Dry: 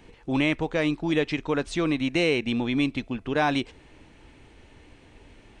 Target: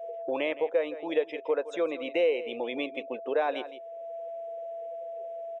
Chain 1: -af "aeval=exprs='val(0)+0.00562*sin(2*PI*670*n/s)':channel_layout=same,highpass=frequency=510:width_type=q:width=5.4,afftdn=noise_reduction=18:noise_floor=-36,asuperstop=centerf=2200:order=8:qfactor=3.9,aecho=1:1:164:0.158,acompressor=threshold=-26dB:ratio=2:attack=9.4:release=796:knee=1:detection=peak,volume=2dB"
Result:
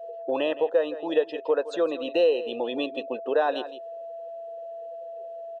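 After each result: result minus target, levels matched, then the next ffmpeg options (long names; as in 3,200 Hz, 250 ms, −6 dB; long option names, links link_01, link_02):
2,000 Hz band −4.5 dB; downward compressor: peak gain reduction −4 dB
-af "aeval=exprs='val(0)+0.00562*sin(2*PI*670*n/s)':channel_layout=same,highpass=frequency=510:width_type=q:width=5.4,afftdn=noise_reduction=18:noise_floor=-36,asuperstop=centerf=4400:order=8:qfactor=3.9,aecho=1:1:164:0.158,acompressor=threshold=-26dB:ratio=2:attack=9.4:release=796:knee=1:detection=peak,volume=2dB"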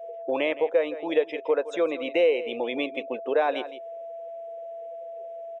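downward compressor: peak gain reduction −4 dB
-af "aeval=exprs='val(0)+0.00562*sin(2*PI*670*n/s)':channel_layout=same,highpass=frequency=510:width_type=q:width=5.4,afftdn=noise_reduction=18:noise_floor=-36,asuperstop=centerf=4400:order=8:qfactor=3.9,aecho=1:1:164:0.158,acompressor=threshold=-34dB:ratio=2:attack=9.4:release=796:knee=1:detection=peak,volume=2dB"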